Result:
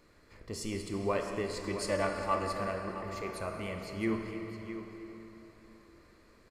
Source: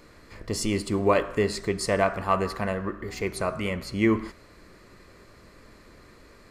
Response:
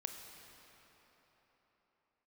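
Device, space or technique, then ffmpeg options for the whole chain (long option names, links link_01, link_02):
cathedral: -filter_complex "[0:a]asettb=1/sr,asplit=3[link_01][link_02][link_03];[link_01]atrim=end=1.564[link_04];[link_02]atrim=start=1.56:end=2.59,asetpts=PTS-STARTPTS,afade=type=in:duration=0.004:curve=qsin,afade=type=out:start_time=1.026:duration=0.004:curve=qsin,aecho=1:1:3.5:1,atrim=end_sample=45423[link_05];[link_03]atrim=start=2.586[link_06];[link_04][link_05]acrossfade=duration=0.004:curve1=hsin:curve2=qsin[link_07];[link_07][link_06]acrossfade=duration=0.004:curve1=qsin:curve2=hsin,aecho=1:1:665:0.251[link_08];[1:a]atrim=start_sample=2205[link_09];[link_08][link_09]afir=irnorm=-1:irlink=0,volume=-8dB"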